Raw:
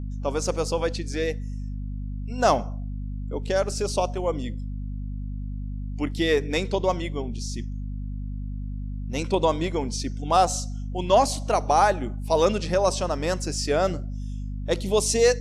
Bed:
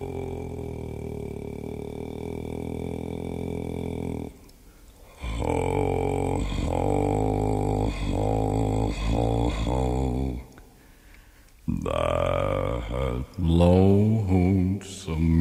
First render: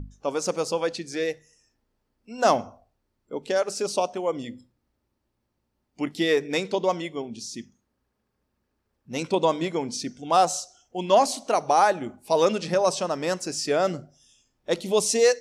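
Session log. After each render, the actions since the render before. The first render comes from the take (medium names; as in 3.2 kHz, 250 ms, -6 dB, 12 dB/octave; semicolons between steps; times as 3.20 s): hum notches 50/100/150/200/250 Hz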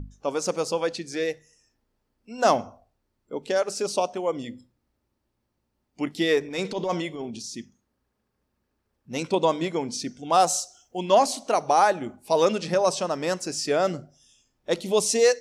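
6.40–7.44 s: transient shaper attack -11 dB, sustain +5 dB; 10.40–10.99 s: treble shelf 7.5 kHz +9 dB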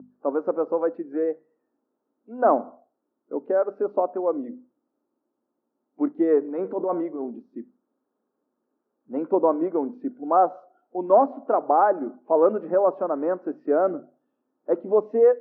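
elliptic band-pass 270–1400 Hz, stop band 80 dB; tilt EQ -3 dB/octave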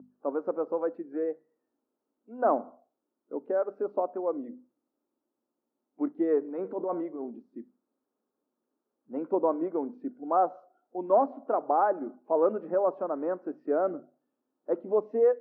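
trim -6 dB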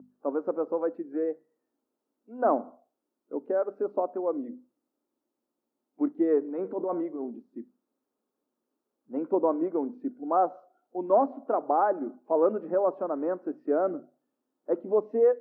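dynamic bell 280 Hz, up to +3 dB, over -42 dBFS, Q 1.2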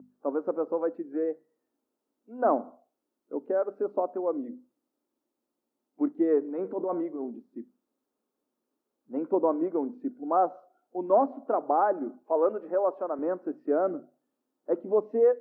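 12.23–13.19 s: tone controls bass -14 dB, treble 0 dB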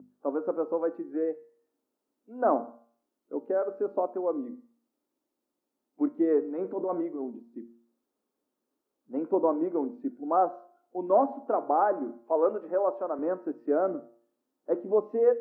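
de-hum 116.8 Hz, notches 27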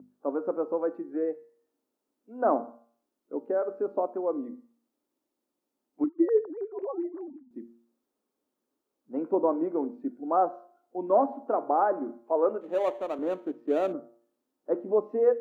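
6.04–7.51 s: formants replaced by sine waves; 12.61–13.93 s: median filter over 25 samples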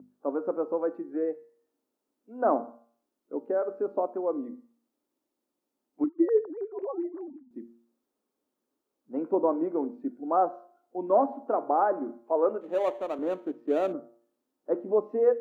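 no audible change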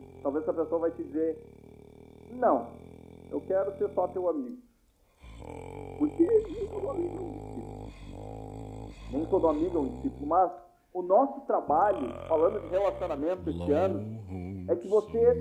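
add bed -17 dB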